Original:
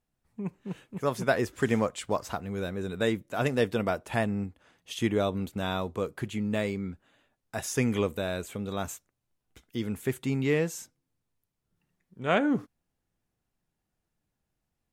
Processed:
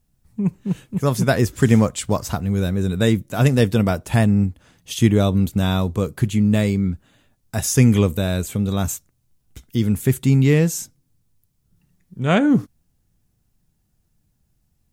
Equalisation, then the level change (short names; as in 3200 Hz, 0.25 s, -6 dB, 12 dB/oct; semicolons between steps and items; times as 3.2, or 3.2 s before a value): tone controls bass +13 dB, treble +11 dB; bell 8500 Hz -2.5 dB 1.5 oct; +5.0 dB